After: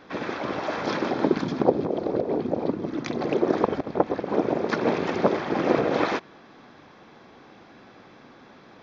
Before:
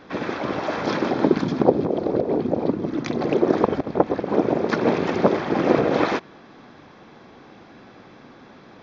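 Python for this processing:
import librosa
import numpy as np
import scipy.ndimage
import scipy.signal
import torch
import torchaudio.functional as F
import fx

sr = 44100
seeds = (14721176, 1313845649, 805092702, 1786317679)

y = fx.low_shelf(x, sr, hz=380.0, db=-3.5)
y = F.gain(torch.from_numpy(y), -2.0).numpy()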